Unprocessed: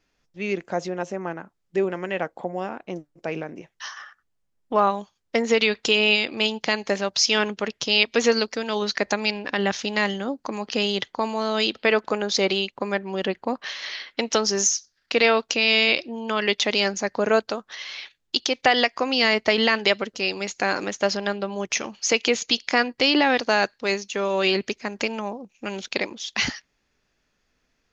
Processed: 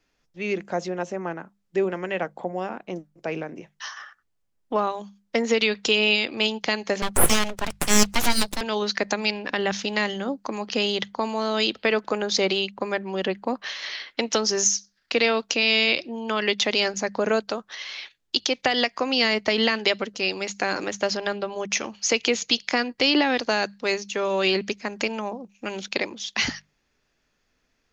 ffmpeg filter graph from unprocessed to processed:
ffmpeg -i in.wav -filter_complex "[0:a]asettb=1/sr,asplit=3[link_01][link_02][link_03];[link_01]atrim=end=7.024[link_04];[link_02]atrim=start=7.02:end=8.61,asetpts=PTS-STARTPTS,afade=type=in:duration=0.004:curve=qsin,afade=type=out:start_time=1.586:duration=0.004:curve=qsin,highpass=87,equalizer=frequency=5000:width_type=o:width=2.6:gain=6,aeval=exprs='abs(val(0))':channel_layout=same[link_05];[link_03]atrim=start=8.606[link_06];[link_04][link_05]acrossfade=duration=0.004:curve1=hsin:curve2=qsin[link_07];[link_07][link_06]acrossfade=duration=0.004:curve1=qsin:curve2=hsin,bandreject=frequency=50:width_type=h:width=6,bandreject=frequency=100:width_type=h:width=6,bandreject=frequency=150:width_type=h:width=6,bandreject=frequency=200:width_type=h:width=6,acrossover=split=370|3000[link_08][link_09][link_10];[link_09]acompressor=threshold=-21dB:ratio=6[link_11];[link_08][link_11][link_10]amix=inputs=3:normalize=0" out.wav

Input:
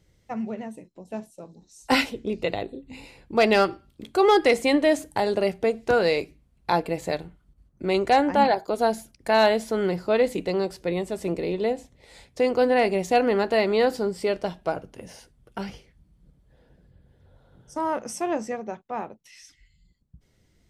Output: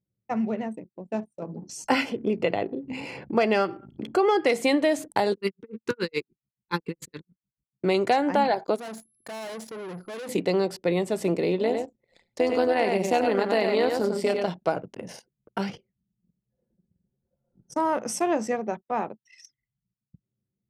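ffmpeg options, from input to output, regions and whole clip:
ffmpeg -i in.wav -filter_complex "[0:a]asettb=1/sr,asplit=3[link_01][link_02][link_03];[link_01]atrim=end=1.424[link_04];[link_02]atrim=start=1.42:end=4.47,asetpts=PTS-STARTPTS,afade=type=in:duration=0.004:curve=qsin,afade=type=out:start_time=3.046:duration=0.004:curve=qsin,highshelf=frequency=5900:gain=-10.5,acompressor=mode=upward:threshold=-29dB:ratio=2.5:attack=3.2:release=140:knee=2.83:detection=peak,asuperstop=centerf=3800:order=4:qfactor=6.4[link_05];[link_03]atrim=start=4.466[link_06];[link_04][link_05]acrossfade=duration=0.004:curve1=hsin:curve2=qsin[link_07];[link_07][link_06]acrossfade=duration=0.004:curve1=qsin:curve2=hsin,asettb=1/sr,asplit=3[link_08][link_09][link_10];[link_08]atrim=end=5.324[link_11];[link_09]atrim=start=5.32:end=7.83,asetpts=PTS-STARTPTS,afade=type=in:duration=0.004:curve=qsin,afade=type=out:start_time=2.506:duration=0.004:curve=qsin,asuperstop=centerf=680:order=4:qfactor=1.5,equalizer=frequency=670:width_type=o:width=0.44:gain=-14.5,aeval=exprs='val(0)*pow(10,-34*(0.5-0.5*cos(2*PI*7*n/s))/20)':channel_layout=same[link_12];[link_10]atrim=start=7.826[link_13];[link_11][link_12]acrossfade=duration=0.004:curve1=hsin:curve2=qsin[link_14];[link_14][link_13]acrossfade=duration=0.004:curve1=qsin:curve2=hsin,asettb=1/sr,asplit=3[link_15][link_16][link_17];[link_15]atrim=end=8.764[link_18];[link_16]atrim=start=8.76:end=10.29,asetpts=PTS-STARTPTS,afade=type=in:duration=0.004:curve=qsin,afade=type=out:start_time=1.526:duration=0.004:curve=qsin,aeval=exprs='if(lt(val(0),0),0.708*val(0),val(0))':channel_layout=same,aeval=exprs='(tanh(89.1*val(0)+0.65)-tanh(0.65))/89.1':channel_layout=same,aeval=exprs='val(0)+0.00141*sin(2*PI*11000*n/s)':channel_layout=same[link_19];[link_17]atrim=start=10.286[link_20];[link_18][link_19]acrossfade=duration=0.004:curve1=hsin:curve2=qsin[link_21];[link_21][link_20]acrossfade=duration=0.004:curve1=qsin:curve2=hsin,asettb=1/sr,asplit=3[link_22][link_23][link_24];[link_22]atrim=end=11.574[link_25];[link_23]atrim=start=11.57:end=14.48,asetpts=PTS-STARTPTS,afade=type=in:duration=0.004:curve=qsin,afade=type=out:start_time=2.906:duration=0.004:curve=qsin,aecho=1:1:98:0.531,atrim=end_sample=128331,tremolo=f=170:d=0.621[link_26];[link_24]atrim=start=14.476[link_27];[link_25][link_26]acrossfade=duration=0.004:curve1=hsin:curve2=qsin[link_28];[link_28][link_27]acrossfade=duration=0.004:curve1=qsin:curve2=hsin,highpass=frequency=120:width=0.5412,highpass=frequency=120:width=1.3066,anlmdn=0.0251,acompressor=threshold=-23dB:ratio=4,volume=4dB" out.wav

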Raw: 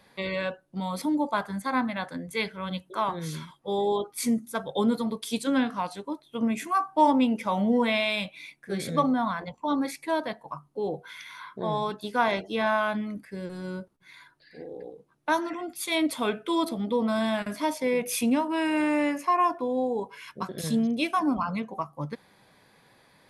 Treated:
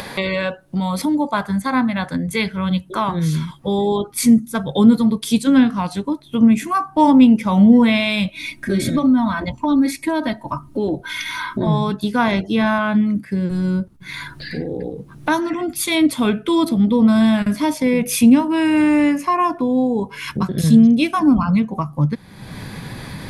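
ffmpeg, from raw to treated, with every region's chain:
ffmpeg -i in.wav -filter_complex "[0:a]asettb=1/sr,asplit=3[link_01][link_02][link_03];[link_01]atrim=end=8.284[link_04];[link_02]atrim=start=8.28:end=11.67,asetpts=PTS-STARTPTS,afade=type=in:duration=0.004:curve=qsin,afade=type=out:start_time=3.386:duration=0.004:curve=qsin,equalizer=frequency=130:width_type=o:width=0.29:gain=7.5,aecho=1:1:3.2:0.81,atrim=end_sample=149499,acompressor=threshold=-24dB:ratio=4:attack=3.2:release=140:knee=1:detection=peak[link_05];[link_03]atrim=start=11.666[link_06];[link_04][link_05]acrossfade=duration=0.004:curve1=hsin:curve2=qsin[link_07];[link_07][link_06]acrossfade=duration=0.004:curve1=qsin:curve2=hsin,asettb=1/sr,asplit=3[link_08][link_09][link_10];[link_08]atrim=end=12.784[link_11];[link_09]atrim=start=12.78:end=13.51,asetpts=PTS-STARTPTS,afade=type=in:duration=0.004:curve=qsin,afade=type=out:start_time=0.726:duration=0.004:curve=qsin,highpass=97,acrossover=split=3800[link_12][link_13];[link_13]acompressor=threshold=-60dB:ratio=4:attack=1:release=60[link_14];[link_12][link_14]amix=inputs=2:normalize=0[link_15];[link_10]atrim=start=13.506[link_16];[link_11][link_15]acrossfade=duration=0.004:curve1=hsin:curve2=qsin[link_17];[link_17][link_16]acrossfade=duration=0.004:curve1=qsin:curve2=hsin,asubboost=boost=5:cutoff=230,acompressor=mode=upward:threshold=-23dB:ratio=2.5,volume=7dB" out.wav

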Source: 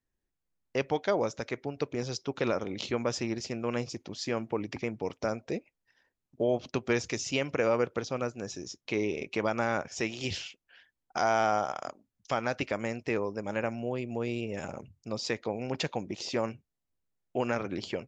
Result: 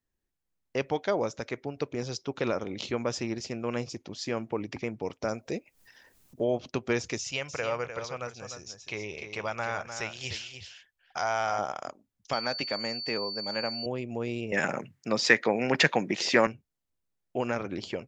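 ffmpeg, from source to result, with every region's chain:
ffmpeg -i in.wav -filter_complex "[0:a]asettb=1/sr,asplit=3[link_01][link_02][link_03];[link_01]atrim=end=5.284[link_04];[link_02]atrim=start=5.28:end=6.45,asetpts=PTS-STARTPTS,afade=type=in:duration=0.004:curve=qsin,afade=type=out:start_time=1.166:duration=0.004:curve=qsin,highshelf=frequency=6000:gain=10,acompressor=mode=upward:threshold=-43dB:ratio=2.5:attack=3.2:release=140:knee=2.83:detection=peak[link_05];[link_03]atrim=start=6.446[link_06];[link_04][link_05]acrossfade=duration=0.004:curve1=hsin:curve2=qsin[link_07];[link_07][link_06]acrossfade=duration=0.004:curve1=qsin:curve2=hsin,asettb=1/sr,asplit=3[link_08][link_09][link_10];[link_08]atrim=end=7.184[link_11];[link_09]atrim=start=7.18:end=11.59,asetpts=PTS-STARTPTS,afade=type=in:duration=0.004:curve=qsin,afade=type=out:start_time=4.406:duration=0.004:curve=qsin,equalizer=frequency=280:width=1:gain=-14,aecho=1:1:302:0.355,atrim=end_sample=194481[link_12];[link_10]atrim=start=11.586[link_13];[link_11][link_12]acrossfade=duration=0.004:curve1=hsin:curve2=qsin[link_14];[link_14][link_13]acrossfade=duration=0.004:curve1=qsin:curve2=hsin,asettb=1/sr,asplit=3[link_15][link_16][link_17];[link_15]atrim=end=12.334[link_18];[link_16]atrim=start=12.33:end=13.86,asetpts=PTS-STARTPTS,afade=type=in:duration=0.004:curve=qsin,afade=type=out:start_time=1.526:duration=0.004:curve=qsin,highpass=170,aeval=exprs='val(0)+0.02*sin(2*PI*4500*n/s)':channel_layout=same,equalizer=frequency=350:width_type=o:width=0.71:gain=-5[link_19];[link_17]atrim=start=13.856[link_20];[link_18][link_19]acrossfade=duration=0.004:curve1=hsin:curve2=qsin[link_21];[link_21][link_20]acrossfade=duration=0.004:curve1=qsin:curve2=hsin,asettb=1/sr,asplit=3[link_22][link_23][link_24];[link_22]atrim=end=14.524[link_25];[link_23]atrim=start=14.52:end=16.47,asetpts=PTS-STARTPTS,afade=type=in:duration=0.004:curve=qsin,afade=type=out:start_time=1.946:duration=0.004:curve=qsin,highpass=frequency=140:width=0.5412,highpass=frequency=140:width=1.3066,equalizer=frequency=1800:width_type=o:width=0.84:gain=12.5,acontrast=76[link_26];[link_24]atrim=start=16.466[link_27];[link_25][link_26]acrossfade=duration=0.004:curve1=hsin:curve2=qsin[link_28];[link_28][link_27]acrossfade=duration=0.004:curve1=qsin:curve2=hsin" out.wav

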